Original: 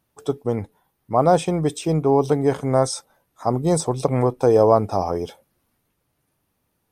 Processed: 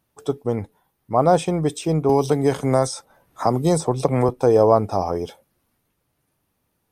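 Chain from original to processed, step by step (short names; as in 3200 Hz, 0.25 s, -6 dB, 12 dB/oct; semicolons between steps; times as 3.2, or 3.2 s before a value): 2.09–4.29 three-band squash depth 70%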